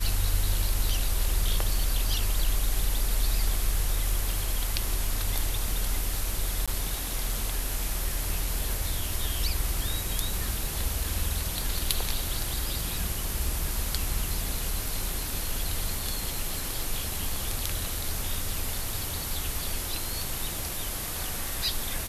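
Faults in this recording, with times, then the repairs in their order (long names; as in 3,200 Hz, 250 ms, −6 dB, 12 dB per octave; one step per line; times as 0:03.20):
surface crackle 26 per second −34 dBFS
0:06.66–0:06.68: drop-out 16 ms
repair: click removal
repair the gap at 0:06.66, 16 ms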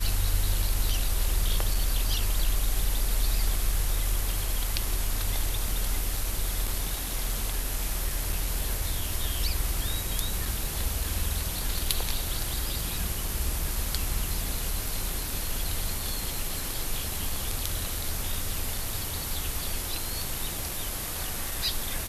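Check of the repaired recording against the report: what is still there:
none of them is left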